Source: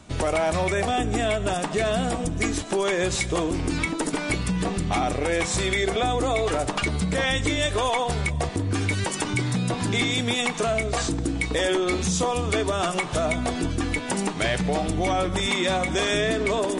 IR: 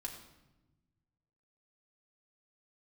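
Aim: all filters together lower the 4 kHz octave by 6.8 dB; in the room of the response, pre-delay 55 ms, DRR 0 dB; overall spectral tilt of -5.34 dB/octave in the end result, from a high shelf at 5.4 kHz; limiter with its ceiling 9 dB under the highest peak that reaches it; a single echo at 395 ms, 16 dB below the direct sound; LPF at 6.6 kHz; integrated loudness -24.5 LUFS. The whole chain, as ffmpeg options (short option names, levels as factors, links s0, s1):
-filter_complex "[0:a]lowpass=6600,equalizer=f=4000:t=o:g=-5,highshelf=f=5400:g=-8.5,alimiter=limit=0.075:level=0:latency=1,aecho=1:1:395:0.158,asplit=2[s0][s1];[1:a]atrim=start_sample=2205,adelay=55[s2];[s1][s2]afir=irnorm=-1:irlink=0,volume=1.19[s3];[s0][s3]amix=inputs=2:normalize=0,volume=1.41"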